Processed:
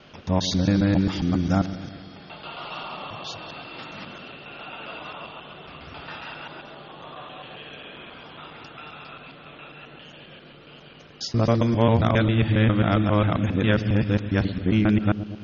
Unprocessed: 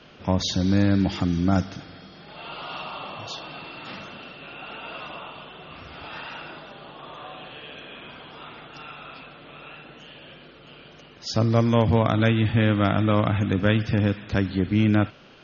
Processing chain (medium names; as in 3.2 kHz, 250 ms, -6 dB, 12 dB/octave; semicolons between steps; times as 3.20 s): time reversed locally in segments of 135 ms; feedback echo behind a low-pass 116 ms, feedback 60%, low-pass 520 Hz, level -11 dB